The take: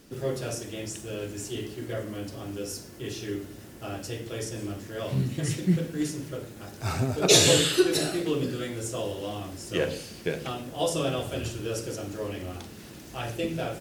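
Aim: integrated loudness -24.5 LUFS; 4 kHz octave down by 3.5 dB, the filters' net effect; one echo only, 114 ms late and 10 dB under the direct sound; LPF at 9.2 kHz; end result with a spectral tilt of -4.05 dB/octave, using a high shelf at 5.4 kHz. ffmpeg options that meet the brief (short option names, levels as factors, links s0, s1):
-af "lowpass=9200,equalizer=f=4000:t=o:g=-6,highshelf=f=5400:g=4.5,aecho=1:1:114:0.316,volume=1.68"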